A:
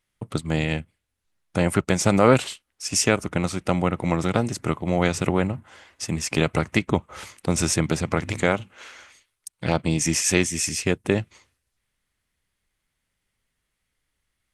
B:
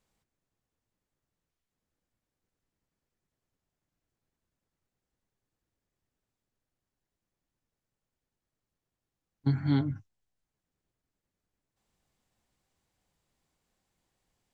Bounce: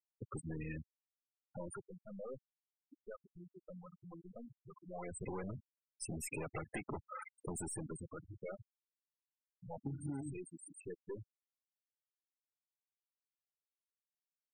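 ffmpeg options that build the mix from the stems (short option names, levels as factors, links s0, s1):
-filter_complex "[0:a]aexciter=amount=5.5:drive=2.5:freq=8400,aeval=exprs='(tanh(28.2*val(0)+0.25)-tanh(0.25))/28.2':c=same,highshelf=f=9200:g=11.5,volume=2.82,afade=t=out:st=1.26:d=0.6:silence=0.334965,afade=t=in:st=4.87:d=0.64:silence=0.281838,afade=t=out:st=7.49:d=0.61:silence=0.421697[s0];[1:a]alimiter=limit=0.1:level=0:latency=1:release=16,adelay=400,volume=0.944[s1];[s0][s1]amix=inputs=2:normalize=0,bass=f=250:g=-8,treble=f=4000:g=-10,afftfilt=real='re*gte(hypot(re,im),0.0251)':imag='im*gte(hypot(re,im),0.0251)':win_size=1024:overlap=0.75,acompressor=threshold=0.0112:ratio=6"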